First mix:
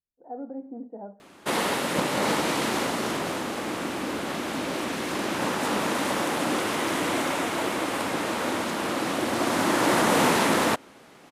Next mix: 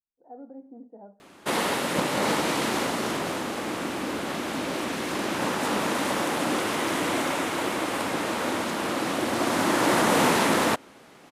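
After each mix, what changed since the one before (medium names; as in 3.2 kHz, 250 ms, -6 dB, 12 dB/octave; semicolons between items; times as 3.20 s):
speech -7.0 dB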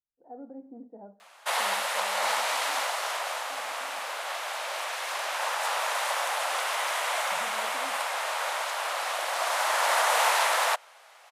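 background: add steep high-pass 610 Hz 36 dB/octave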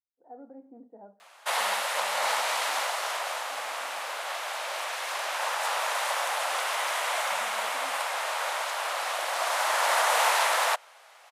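speech: add tilt EQ +2.5 dB/octave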